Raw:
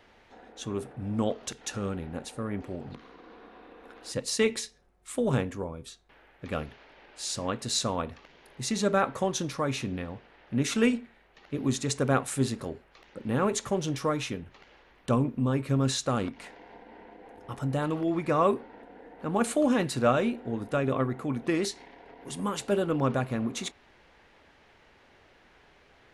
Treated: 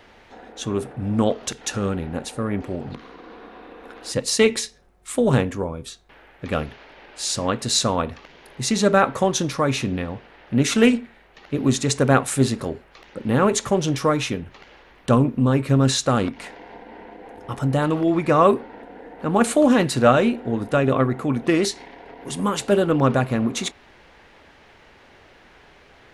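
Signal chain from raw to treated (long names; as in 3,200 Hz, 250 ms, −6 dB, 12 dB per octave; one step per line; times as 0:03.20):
highs frequency-modulated by the lows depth 0.1 ms
level +8.5 dB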